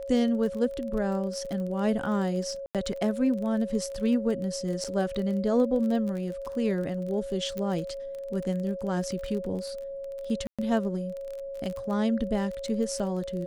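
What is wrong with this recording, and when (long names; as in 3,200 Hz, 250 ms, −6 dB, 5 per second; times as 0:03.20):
surface crackle 28 per second −33 dBFS
whistle 550 Hz −34 dBFS
0:02.66–0:02.75: drop-out 87 ms
0:04.84–0:04.85: drop-out 6.6 ms
0:07.58: click −20 dBFS
0:10.47–0:10.59: drop-out 116 ms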